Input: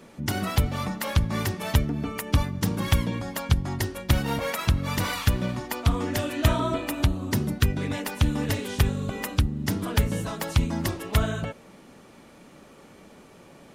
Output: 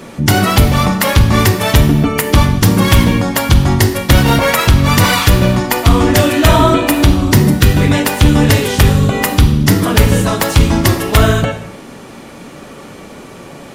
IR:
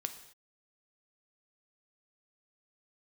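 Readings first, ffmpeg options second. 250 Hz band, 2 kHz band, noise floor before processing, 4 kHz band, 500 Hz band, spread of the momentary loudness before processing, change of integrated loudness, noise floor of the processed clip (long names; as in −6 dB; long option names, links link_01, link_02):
+16.0 dB, +16.5 dB, −51 dBFS, +16.0 dB, +16.5 dB, 5 LU, +15.5 dB, −34 dBFS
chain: -filter_complex "[1:a]atrim=start_sample=2205[link_01];[0:a][link_01]afir=irnorm=-1:irlink=0,apsyclip=19dB,volume=-1.5dB"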